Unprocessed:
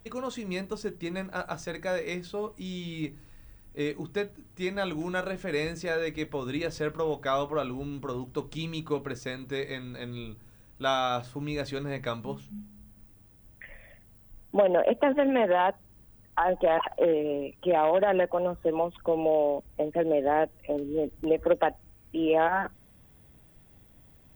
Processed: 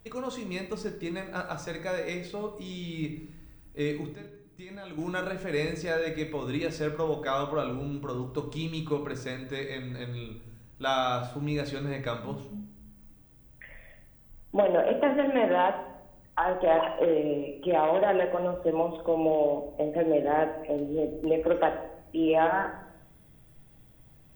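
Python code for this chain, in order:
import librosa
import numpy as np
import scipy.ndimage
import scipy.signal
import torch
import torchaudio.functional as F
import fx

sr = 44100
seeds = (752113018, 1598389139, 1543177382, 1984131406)

y = fx.level_steps(x, sr, step_db=21, at=(4.14, 4.98))
y = fx.room_shoebox(y, sr, seeds[0], volume_m3=230.0, walls='mixed', distance_m=0.57)
y = y * 10.0 ** (-1.5 / 20.0)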